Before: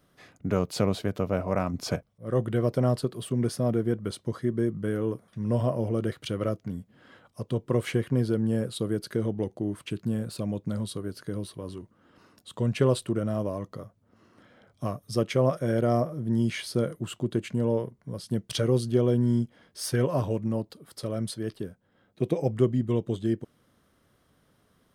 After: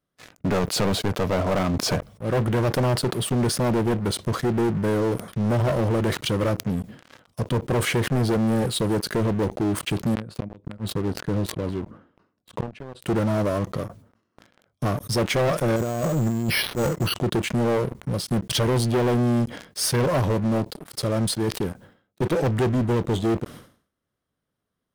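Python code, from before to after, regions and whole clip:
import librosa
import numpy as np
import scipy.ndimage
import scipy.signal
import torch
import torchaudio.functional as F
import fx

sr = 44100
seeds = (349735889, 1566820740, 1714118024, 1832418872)

y = fx.chain(x, sr, fx.lowpass(hz=1300.0, slope=6),
    fx.gate_flip(shuts_db=-22.0, range_db=-27), at=(10.14, 13.02))
y = fx.chain(y, sr, fx.auto_swell(attack_ms=110.0),
    fx.over_compress(threshold_db=-29.0, ratio=-0.5),
    fx.resample_bad(factor=6, down='filtered', up='hold'), at=(15.76, 17.14))
y = fx.leveller(y, sr, passes=5)
y = fx.sustainer(y, sr, db_per_s=120.0)
y = F.gain(torch.from_numpy(y), -6.5).numpy()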